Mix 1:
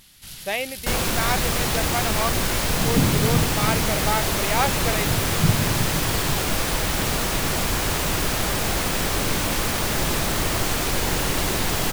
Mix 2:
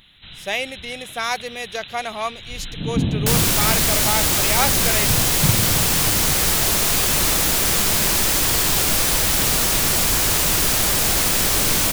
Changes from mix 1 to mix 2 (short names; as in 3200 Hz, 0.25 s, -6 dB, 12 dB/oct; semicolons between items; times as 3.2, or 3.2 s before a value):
first sound: add brick-wall FIR low-pass 4100 Hz; second sound: entry +2.40 s; master: add high shelf 3500 Hz +10.5 dB